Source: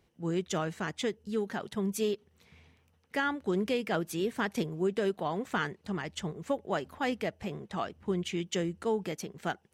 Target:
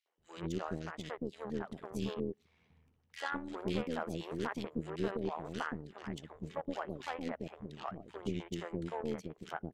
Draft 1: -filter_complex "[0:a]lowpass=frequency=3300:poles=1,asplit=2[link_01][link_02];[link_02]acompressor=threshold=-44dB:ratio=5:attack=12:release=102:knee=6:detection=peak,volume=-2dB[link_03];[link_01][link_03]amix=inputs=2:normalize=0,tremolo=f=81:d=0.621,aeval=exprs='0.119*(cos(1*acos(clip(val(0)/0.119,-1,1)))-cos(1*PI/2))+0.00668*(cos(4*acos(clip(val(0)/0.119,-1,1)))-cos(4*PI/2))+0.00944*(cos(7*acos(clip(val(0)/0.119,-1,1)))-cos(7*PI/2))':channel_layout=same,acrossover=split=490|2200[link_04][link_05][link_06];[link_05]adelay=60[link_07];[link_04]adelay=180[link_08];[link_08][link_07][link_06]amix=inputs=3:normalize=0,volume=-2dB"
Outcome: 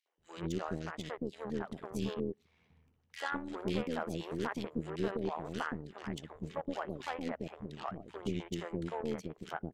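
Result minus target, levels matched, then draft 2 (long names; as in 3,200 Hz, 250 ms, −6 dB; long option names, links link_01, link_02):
downward compressor: peak gain reduction −9 dB
-filter_complex "[0:a]lowpass=frequency=3300:poles=1,asplit=2[link_01][link_02];[link_02]acompressor=threshold=-55dB:ratio=5:attack=12:release=102:knee=6:detection=peak,volume=-2dB[link_03];[link_01][link_03]amix=inputs=2:normalize=0,tremolo=f=81:d=0.621,aeval=exprs='0.119*(cos(1*acos(clip(val(0)/0.119,-1,1)))-cos(1*PI/2))+0.00668*(cos(4*acos(clip(val(0)/0.119,-1,1)))-cos(4*PI/2))+0.00944*(cos(7*acos(clip(val(0)/0.119,-1,1)))-cos(7*PI/2))':channel_layout=same,acrossover=split=490|2200[link_04][link_05][link_06];[link_05]adelay=60[link_07];[link_04]adelay=180[link_08];[link_08][link_07][link_06]amix=inputs=3:normalize=0,volume=-2dB"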